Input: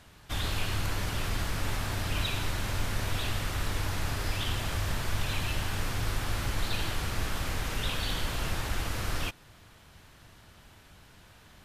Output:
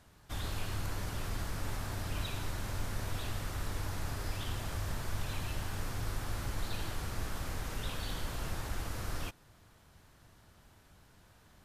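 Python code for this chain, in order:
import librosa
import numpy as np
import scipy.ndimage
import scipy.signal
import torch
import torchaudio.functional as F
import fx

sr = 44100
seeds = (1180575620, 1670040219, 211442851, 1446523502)

y = fx.peak_eq(x, sr, hz=2800.0, db=-5.5, octaves=1.4)
y = F.gain(torch.from_numpy(y), -5.5).numpy()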